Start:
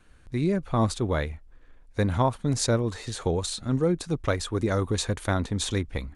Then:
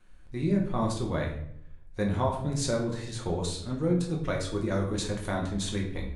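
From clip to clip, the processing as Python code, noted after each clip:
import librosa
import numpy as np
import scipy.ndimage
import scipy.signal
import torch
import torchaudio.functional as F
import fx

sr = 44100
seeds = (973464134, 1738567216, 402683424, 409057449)

y = fx.room_shoebox(x, sr, seeds[0], volume_m3=120.0, walls='mixed', distance_m=0.96)
y = y * librosa.db_to_amplitude(-7.5)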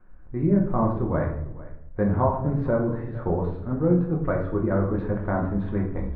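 y = scipy.signal.sosfilt(scipy.signal.butter(4, 1500.0, 'lowpass', fs=sr, output='sos'), x)
y = y + 10.0 ** (-19.0 / 20.0) * np.pad(y, (int(450 * sr / 1000.0), 0))[:len(y)]
y = y * librosa.db_to_amplitude(5.5)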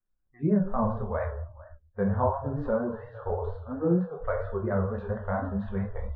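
y = fx.noise_reduce_blind(x, sr, reduce_db=29)
y = fx.vibrato(y, sr, rate_hz=4.3, depth_cents=74.0)
y = y * librosa.db_to_amplitude(-3.0)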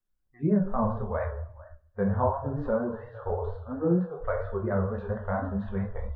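y = fx.echo_thinned(x, sr, ms=68, feedback_pct=59, hz=150.0, wet_db=-23)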